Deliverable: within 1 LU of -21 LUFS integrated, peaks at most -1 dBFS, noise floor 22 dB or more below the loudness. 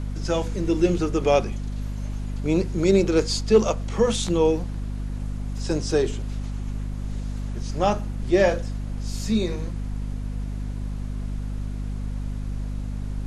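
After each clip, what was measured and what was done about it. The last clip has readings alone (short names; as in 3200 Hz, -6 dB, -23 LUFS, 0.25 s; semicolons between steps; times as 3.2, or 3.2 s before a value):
hum 50 Hz; harmonics up to 250 Hz; hum level -26 dBFS; noise floor -31 dBFS; noise floor target -48 dBFS; loudness -25.5 LUFS; peak -6.5 dBFS; loudness target -21.0 LUFS
-> notches 50/100/150/200/250 Hz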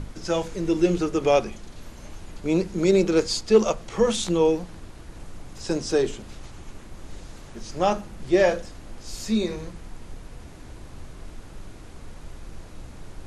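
hum none; noise floor -43 dBFS; noise floor target -46 dBFS
-> noise print and reduce 6 dB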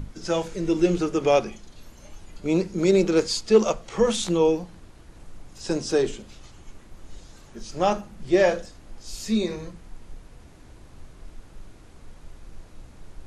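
noise floor -48 dBFS; loudness -23.5 LUFS; peak -7.0 dBFS; loudness target -21.0 LUFS
-> gain +2.5 dB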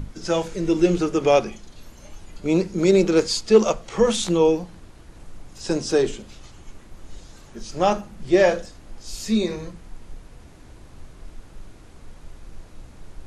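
loudness -21.0 LUFS; peak -4.5 dBFS; noise floor -46 dBFS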